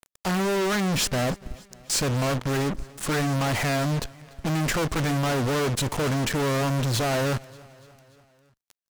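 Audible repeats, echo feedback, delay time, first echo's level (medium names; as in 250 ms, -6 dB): 3, 59%, 291 ms, -23.0 dB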